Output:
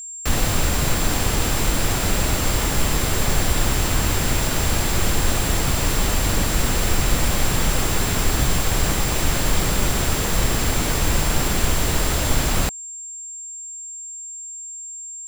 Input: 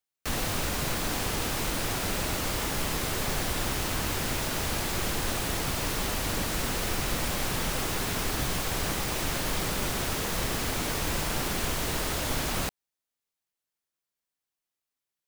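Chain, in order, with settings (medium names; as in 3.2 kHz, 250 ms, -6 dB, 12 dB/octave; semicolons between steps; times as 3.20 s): bass shelf 120 Hz +8.5 dB; whistle 7.4 kHz -38 dBFS; trim +6.5 dB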